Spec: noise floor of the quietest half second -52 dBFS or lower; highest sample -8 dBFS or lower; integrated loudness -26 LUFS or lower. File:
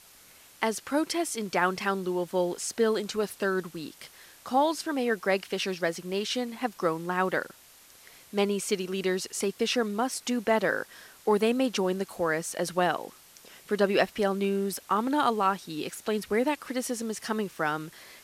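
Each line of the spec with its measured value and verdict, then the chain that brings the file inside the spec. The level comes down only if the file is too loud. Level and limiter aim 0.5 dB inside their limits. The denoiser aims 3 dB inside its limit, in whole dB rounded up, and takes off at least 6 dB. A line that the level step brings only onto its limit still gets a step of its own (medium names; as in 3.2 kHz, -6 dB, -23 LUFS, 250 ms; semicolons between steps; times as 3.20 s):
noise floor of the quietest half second -55 dBFS: pass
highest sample -9.5 dBFS: pass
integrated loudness -28.5 LUFS: pass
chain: none needed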